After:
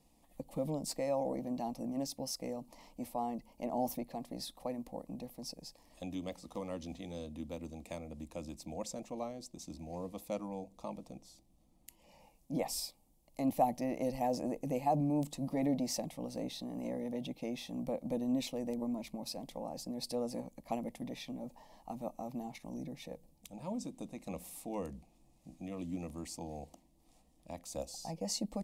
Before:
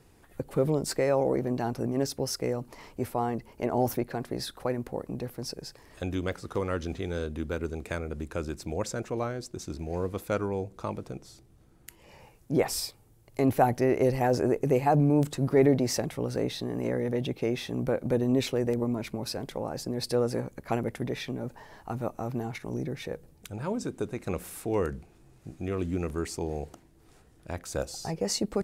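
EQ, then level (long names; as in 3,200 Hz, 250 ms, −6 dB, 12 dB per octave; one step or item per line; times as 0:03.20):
phaser with its sweep stopped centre 400 Hz, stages 6
−6.0 dB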